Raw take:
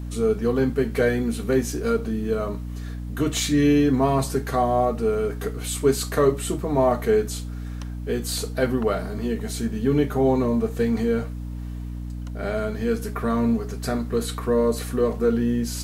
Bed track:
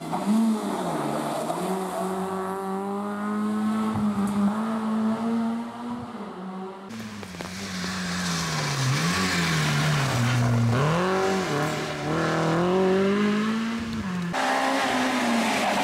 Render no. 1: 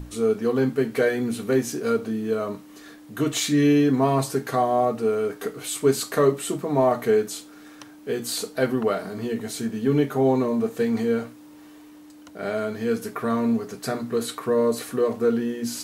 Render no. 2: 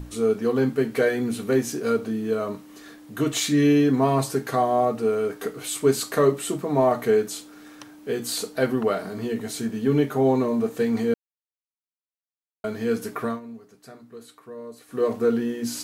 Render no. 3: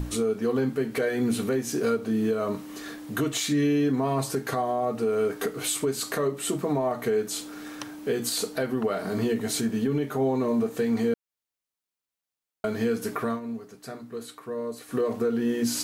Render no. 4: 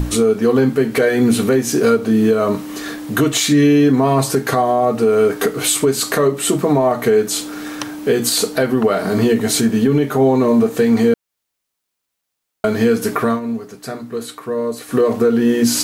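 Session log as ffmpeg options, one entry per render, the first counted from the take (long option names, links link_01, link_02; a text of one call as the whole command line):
ffmpeg -i in.wav -af "bandreject=frequency=60:width_type=h:width=6,bandreject=frequency=120:width_type=h:width=6,bandreject=frequency=180:width_type=h:width=6,bandreject=frequency=240:width_type=h:width=6" out.wav
ffmpeg -i in.wav -filter_complex "[0:a]asplit=5[link_01][link_02][link_03][link_04][link_05];[link_01]atrim=end=11.14,asetpts=PTS-STARTPTS,afade=type=out:start_time=11.136:duration=0.004:curve=hsin[link_06];[link_02]atrim=start=11.14:end=12.64,asetpts=PTS-STARTPTS,volume=0[link_07];[link_03]atrim=start=12.64:end=13.4,asetpts=PTS-STARTPTS,afade=type=in:duration=0.004:curve=hsin,afade=type=out:start_time=0.6:duration=0.16:silence=0.133352[link_08];[link_04]atrim=start=13.4:end=14.88,asetpts=PTS-STARTPTS,volume=-17.5dB[link_09];[link_05]atrim=start=14.88,asetpts=PTS-STARTPTS,afade=type=in:duration=0.16:silence=0.133352[link_10];[link_06][link_07][link_08][link_09][link_10]concat=n=5:v=0:a=1" out.wav
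ffmpeg -i in.wav -filter_complex "[0:a]asplit=2[link_01][link_02];[link_02]acompressor=threshold=-30dB:ratio=10,volume=0dB[link_03];[link_01][link_03]amix=inputs=2:normalize=0,alimiter=limit=-17dB:level=0:latency=1:release=262" out.wav
ffmpeg -i in.wav -af "volume=11.5dB" out.wav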